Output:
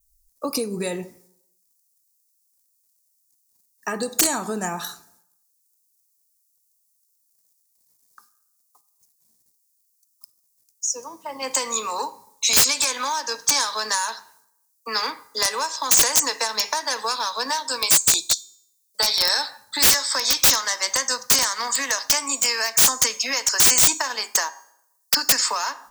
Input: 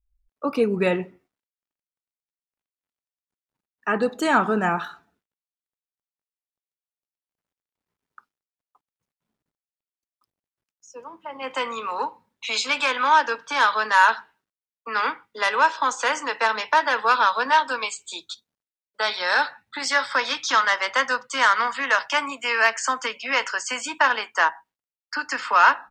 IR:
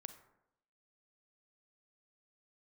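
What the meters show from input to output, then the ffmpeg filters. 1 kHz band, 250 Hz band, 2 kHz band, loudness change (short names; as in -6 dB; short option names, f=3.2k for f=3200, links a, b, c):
-7.0 dB, -3.0 dB, -6.5 dB, +2.5 dB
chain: -filter_complex "[0:a]equalizer=f=1.4k:t=o:w=0.24:g=-10.5,acompressor=threshold=-26dB:ratio=12,bandreject=f=403.9:t=h:w=4,bandreject=f=807.8:t=h:w=4,bandreject=f=1.2117k:t=h:w=4,bandreject=f=1.6156k:t=h:w=4,bandreject=f=2.0195k:t=h:w=4,bandreject=f=2.4234k:t=h:w=4,bandreject=f=2.8273k:t=h:w=4,bandreject=f=3.2312k:t=h:w=4,bandreject=f=3.6351k:t=h:w=4,bandreject=f=4.039k:t=h:w=4,bandreject=f=4.4429k:t=h:w=4,bandreject=f=4.8468k:t=h:w=4,bandreject=f=5.2507k:t=h:w=4,bandreject=f=5.6546k:t=h:w=4,bandreject=f=6.0585k:t=h:w=4,bandreject=f=6.4624k:t=h:w=4,bandreject=f=6.8663k:t=h:w=4,bandreject=f=7.2702k:t=h:w=4,bandreject=f=7.6741k:t=h:w=4,bandreject=f=8.078k:t=h:w=4,bandreject=f=8.4819k:t=h:w=4,bandreject=f=8.8858k:t=h:w=4,bandreject=f=9.2897k:t=h:w=4,bandreject=f=9.6936k:t=h:w=4,bandreject=f=10.0975k:t=h:w=4,bandreject=f=10.5014k:t=h:w=4,bandreject=f=10.9053k:t=h:w=4,bandreject=f=11.3092k:t=h:w=4,bandreject=f=11.7131k:t=h:w=4,bandreject=f=12.117k:t=h:w=4,bandreject=f=12.5209k:t=h:w=4,bandreject=f=12.9248k:t=h:w=4,bandreject=f=13.3287k:t=h:w=4,bandreject=f=13.7326k:t=h:w=4,adynamicequalizer=threshold=0.00224:dfrequency=4900:dqfactor=5.7:tfrequency=4900:tqfactor=5.7:attack=5:release=100:ratio=0.375:range=3:mode=cutabove:tftype=bell,aexciter=amount=9.7:drive=8.3:freq=4.6k,asplit=2[a][b];[1:a]atrim=start_sample=2205[c];[b][c]afir=irnorm=-1:irlink=0,volume=-2.5dB[d];[a][d]amix=inputs=2:normalize=0,aeval=exprs='(mod(2.51*val(0)+1,2)-1)/2.51':c=same"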